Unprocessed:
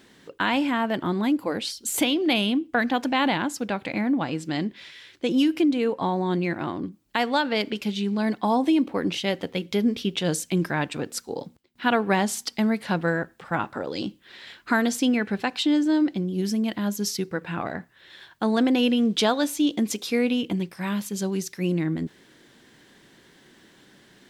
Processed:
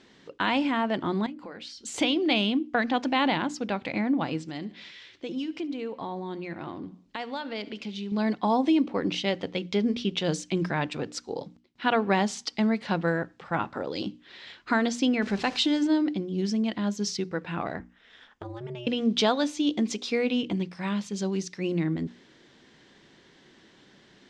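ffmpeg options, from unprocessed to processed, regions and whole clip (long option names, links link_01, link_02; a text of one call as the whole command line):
ffmpeg -i in.wav -filter_complex "[0:a]asettb=1/sr,asplit=3[link_01][link_02][link_03];[link_01]atrim=end=1.264[link_04];[link_02]atrim=start=1.26:end=1.83,asetpts=PTS-STARTPTS,afade=type=in:duration=0.004:curve=qsin,afade=type=out:start_time=0.566:duration=0.004:curve=qsin,equalizer=frequency=1600:width=1.4:gain=6.5,acompressor=threshold=-37dB:ratio=5:attack=3.2:release=140:knee=1:detection=peak,asplit=2[link_05][link_06];[link_06]adelay=26,volume=-13.5dB[link_07];[link_05][link_07]amix=inputs=2:normalize=0,atrim=end_sample=25137[link_08];[link_03]atrim=start=1.826[link_09];[link_04][link_08]acrossfade=duration=0.004:curve1=hsin:curve2=qsin[link_10];[link_10][link_09]acrossfade=duration=0.004:curve1=qsin:curve2=hsin,asettb=1/sr,asplit=3[link_11][link_12][link_13];[link_11]atrim=end=4.414[link_14];[link_12]atrim=start=4.41:end=8.12,asetpts=PTS-STARTPTS,afade=type=in:duration=0.004:curve=qsin,afade=type=out:start_time=3.706:duration=0.004:curve=qsin,acompressor=threshold=-35dB:ratio=2:attack=3.2:release=140:knee=1:detection=peak,aecho=1:1:71|142|213|284:0.106|0.0551|0.0286|0.0149,atrim=end_sample=163611[link_15];[link_13]atrim=start=8.116[link_16];[link_14][link_15]acrossfade=duration=0.004:curve1=hsin:curve2=qsin[link_17];[link_17][link_16]acrossfade=duration=0.004:curve1=qsin:curve2=hsin,asettb=1/sr,asplit=3[link_18][link_19][link_20];[link_18]atrim=end=15.224[link_21];[link_19]atrim=start=15.22:end=15.87,asetpts=PTS-STARTPTS,afade=type=in:duration=0.004:curve=qsin,afade=type=out:start_time=0.646:duration=0.004:curve=qsin,aeval=exprs='val(0)+0.5*0.0168*sgn(val(0))':channel_layout=same,highshelf=frequency=5600:gain=7.5[link_22];[link_20]atrim=start=15.866[link_23];[link_21][link_22]acrossfade=duration=0.004:curve1=hsin:curve2=qsin[link_24];[link_24][link_23]acrossfade=duration=0.004:curve1=qsin:curve2=hsin,asettb=1/sr,asplit=3[link_25][link_26][link_27];[link_25]atrim=end=17.794[link_28];[link_26]atrim=start=17.79:end=18.87,asetpts=PTS-STARTPTS,afade=type=in:duration=0.004:curve=qsin,afade=type=out:start_time=1.076:duration=0.004:curve=qsin,equalizer=frequency=4200:width_type=o:width=0.22:gain=-14.5,acompressor=threshold=-30dB:ratio=8:attack=3.2:release=140:knee=1:detection=peak,aeval=exprs='val(0)*sin(2*PI*120*n/s)':channel_layout=same[link_29];[link_27]atrim=start=18.866[link_30];[link_28][link_29]acrossfade=duration=0.004:curve1=hsin:curve2=qsin[link_31];[link_31][link_30]acrossfade=duration=0.004:curve1=qsin:curve2=hsin,lowpass=frequency=6500:width=0.5412,lowpass=frequency=6500:width=1.3066,equalizer=frequency=1600:width_type=o:width=0.26:gain=-3,bandreject=frequency=60:width_type=h:width=6,bandreject=frequency=120:width_type=h:width=6,bandreject=frequency=180:width_type=h:width=6,bandreject=frequency=240:width_type=h:width=6,bandreject=frequency=300:width_type=h:width=6,volume=-1.5dB" out.wav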